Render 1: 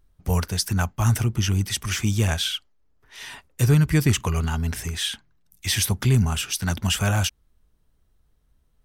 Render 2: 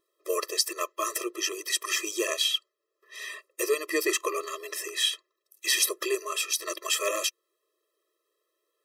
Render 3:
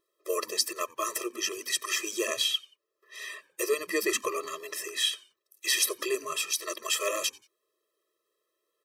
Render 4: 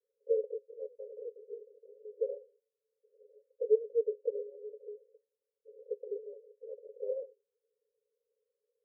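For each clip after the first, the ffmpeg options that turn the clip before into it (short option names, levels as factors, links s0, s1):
-af "afftfilt=real='re*eq(mod(floor(b*sr/1024/340),2),1)':imag='im*eq(mod(floor(b*sr/1024/340),2),1)':win_size=1024:overlap=0.75,volume=1.41"
-filter_complex "[0:a]asplit=3[s0][s1][s2];[s1]adelay=90,afreqshift=-120,volume=0.0668[s3];[s2]adelay=180,afreqshift=-240,volume=0.0221[s4];[s0][s3][s4]amix=inputs=3:normalize=0,volume=0.841"
-af "asuperpass=centerf=480:order=12:qfactor=3.5,volume=1.33"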